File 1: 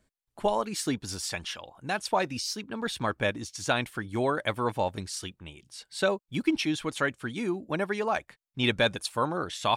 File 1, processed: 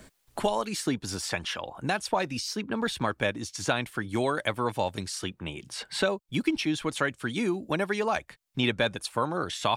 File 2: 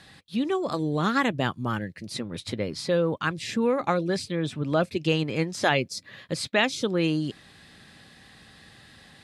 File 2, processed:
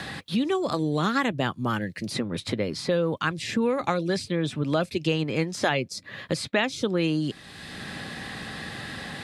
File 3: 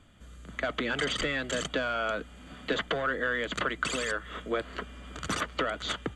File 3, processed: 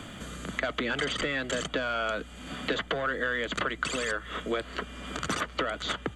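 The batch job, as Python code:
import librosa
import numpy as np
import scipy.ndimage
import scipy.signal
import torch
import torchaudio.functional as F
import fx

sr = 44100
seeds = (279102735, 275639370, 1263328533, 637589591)

y = fx.band_squash(x, sr, depth_pct=70)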